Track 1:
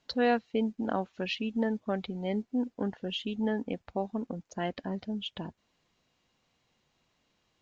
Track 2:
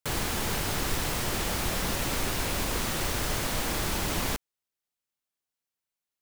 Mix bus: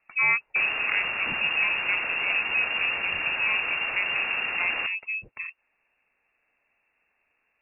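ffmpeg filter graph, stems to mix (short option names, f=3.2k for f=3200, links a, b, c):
-filter_complex "[0:a]volume=3dB[a];[1:a]volume=23dB,asoftclip=hard,volume=-23dB,adelay=500,volume=1.5dB[b];[a][b]amix=inputs=2:normalize=0,lowpass=f=2.4k:t=q:w=0.5098,lowpass=f=2.4k:t=q:w=0.6013,lowpass=f=2.4k:t=q:w=0.9,lowpass=f=2.4k:t=q:w=2.563,afreqshift=-2800"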